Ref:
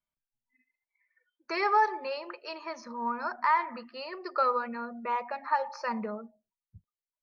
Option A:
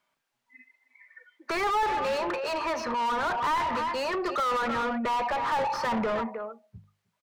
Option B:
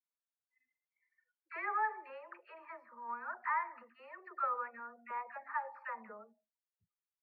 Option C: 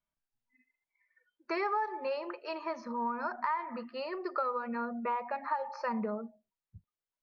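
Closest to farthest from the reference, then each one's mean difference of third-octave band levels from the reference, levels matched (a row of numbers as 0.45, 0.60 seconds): C, B, A; 2.5, 6.0, 12.5 decibels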